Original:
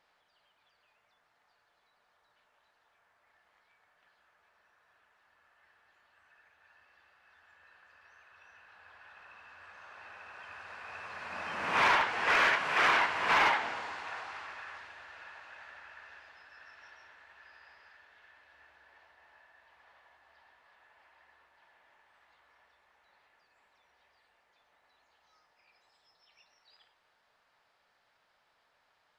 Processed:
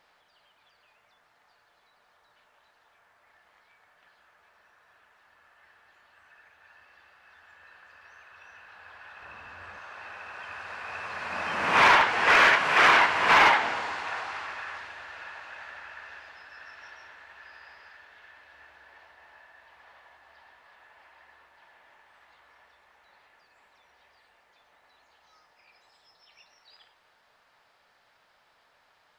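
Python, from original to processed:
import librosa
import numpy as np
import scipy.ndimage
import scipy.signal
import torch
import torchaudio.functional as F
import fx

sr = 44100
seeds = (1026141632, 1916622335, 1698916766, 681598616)

y = fx.low_shelf(x, sr, hz=420.0, db=10.0, at=(9.22, 9.79))
y = F.gain(torch.from_numpy(y), 7.5).numpy()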